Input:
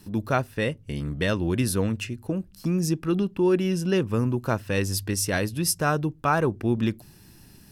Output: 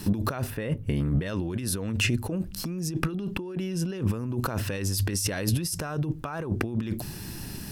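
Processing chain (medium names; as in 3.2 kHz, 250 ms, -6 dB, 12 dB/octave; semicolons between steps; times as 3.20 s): compressor with a negative ratio -34 dBFS, ratio -1; 0.50–1.26 s: peaking EQ 5.8 kHz -11.5 dB 1.7 oct; trim +5 dB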